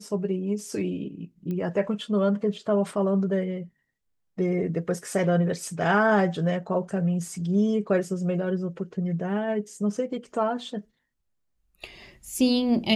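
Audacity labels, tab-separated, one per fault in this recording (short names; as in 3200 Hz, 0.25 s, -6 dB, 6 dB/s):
1.510000	1.510000	pop -22 dBFS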